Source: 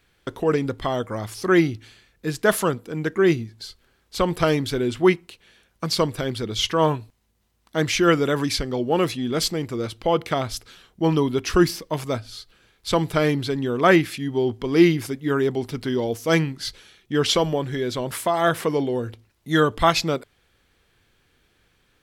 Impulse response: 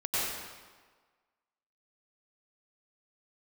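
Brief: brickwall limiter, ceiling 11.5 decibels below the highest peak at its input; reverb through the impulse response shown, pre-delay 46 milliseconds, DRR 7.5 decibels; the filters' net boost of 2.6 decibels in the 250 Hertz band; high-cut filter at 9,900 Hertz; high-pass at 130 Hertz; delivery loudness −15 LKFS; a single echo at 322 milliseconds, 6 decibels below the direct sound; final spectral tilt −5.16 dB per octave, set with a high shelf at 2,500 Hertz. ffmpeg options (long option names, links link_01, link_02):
-filter_complex "[0:a]highpass=130,lowpass=9900,equalizer=frequency=250:width_type=o:gain=4.5,highshelf=frequency=2500:gain=-5,alimiter=limit=-14dB:level=0:latency=1,aecho=1:1:322:0.501,asplit=2[link_01][link_02];[1:a]atrim=start_sample=2205,adelay=46[link_03];[link_02][link_03]afir=irnorm=-1:irlink=0,volume=-16.5dB[link_04];[link_01][link_04]amix=inputs=2:normalize=0,volume=9.5dB"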